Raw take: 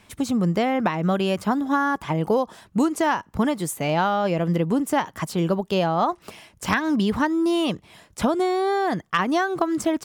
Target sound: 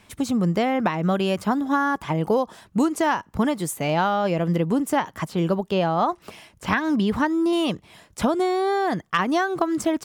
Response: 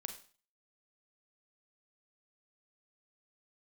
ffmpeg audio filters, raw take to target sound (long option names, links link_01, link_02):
-filter_complex "[0:a]asettb=1/sr,asplit=3[link_01][link_02][link_03];[link_01]atrim=end=4.954[link_04];[link_02]atrim=start=4.95:end=7.53,asetpts=PTS-STARTPTS,afade=type=in:duration=0.004:curve=qsin,afade=type=out:start_time=2.576:duration=0.004:curve=qsin,acrossover=split=3700[link_05][link_06];[link_06]acompressor=threshold=-43dB:ratio=4:attack=1:release=60[link_07];[link_05][link_07]amix=inputs=2:normalize=0[link_08];[link_03]atrim=start=7.526[link_09];[link_04][link_08]acrossfade=duration=0.004:curve1=hsin:curve2=qsin[link_10];[link_10][link_09]acrossfade=duration=0.004:curve1=qsin:curve2=hsin"